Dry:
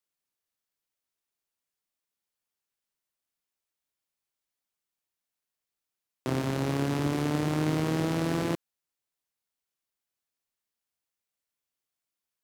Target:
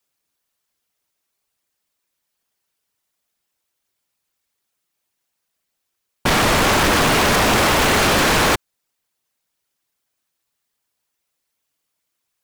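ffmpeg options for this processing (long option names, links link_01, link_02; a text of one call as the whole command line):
ffmpeg -i in.wav -af "aeval=exprs='0.188*(cos(1*acos(clip(val(0)/0.188,-1,1)))-cos(1*PI/2))+0.0841*(cos(3*acos(clip(val(0)/0.188,-1,1)))-cos(3*PI/2))+0.075*(cos(6*acos(clip(val(0)/0.188,-1,1)))-cos(6*PI/2))':channel_layout=same,afftfilt=real='hypot(re,im)*cos(2*PI*random(0))':imag='hypot(re,im)*sin(2*PI*random(1))':win_size=512:overlap=0.75,aeval=exprs='0.106*sin(PI/2*6.31*val(0)/0.106)':channel_layout=same,volume=7dB" out.wav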